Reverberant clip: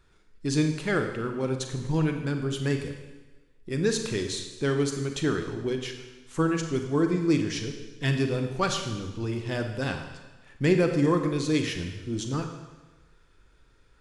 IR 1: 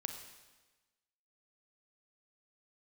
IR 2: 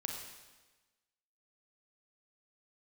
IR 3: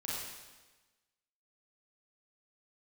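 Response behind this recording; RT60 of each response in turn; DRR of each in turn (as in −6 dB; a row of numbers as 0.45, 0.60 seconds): 1; 1.2, 1.2, 1.2 seconds; 5.0, 1.0, −7.5 decibels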